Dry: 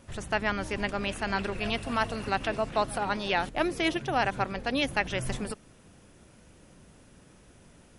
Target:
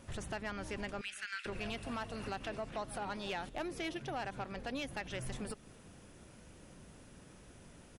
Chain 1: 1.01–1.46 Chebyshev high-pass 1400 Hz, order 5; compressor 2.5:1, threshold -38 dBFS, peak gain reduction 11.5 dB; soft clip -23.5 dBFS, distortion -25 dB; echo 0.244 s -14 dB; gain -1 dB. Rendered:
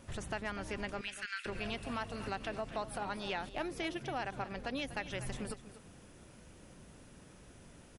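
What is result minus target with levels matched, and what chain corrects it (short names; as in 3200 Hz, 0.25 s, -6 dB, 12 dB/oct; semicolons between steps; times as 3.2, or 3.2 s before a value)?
echo-to-direct +11 dB; soft clip: distortion -10 dB
1.01–1.46 Chebyshev high-pass 1400 Hz, order 5; compressor 2.5:1, threshold -38 dBFS, peak gain reduction 11.5 dB; soft clip -30.5 dBFS, distortion -15 dB; echo 0.244 s -25 dB; gain -1 dB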